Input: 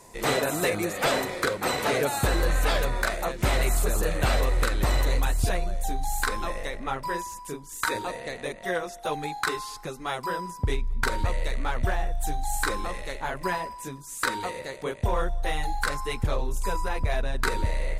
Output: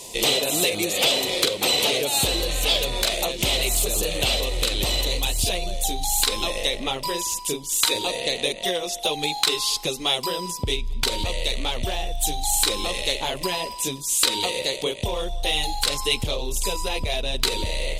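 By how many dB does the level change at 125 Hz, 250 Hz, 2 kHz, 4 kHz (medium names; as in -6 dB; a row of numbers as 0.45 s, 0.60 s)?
-2.5 dB, +1.5 dB, +1.0 dB, +14.5 dB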